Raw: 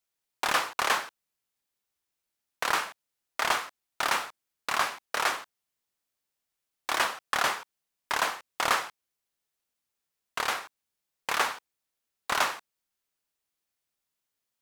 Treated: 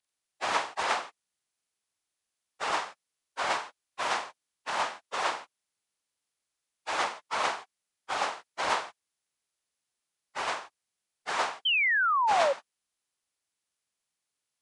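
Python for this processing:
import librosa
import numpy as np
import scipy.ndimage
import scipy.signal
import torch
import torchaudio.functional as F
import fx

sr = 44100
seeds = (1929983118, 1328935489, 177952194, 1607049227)

y = fx.partial_stretch(x, sr, pct=85)
y = fx.spec_paint(y, sr, seeds[0], shape='fall', start_s=11.65, length_s=0.88, low_hz=530.0, high_hz=3200.0, level_db=-25.0)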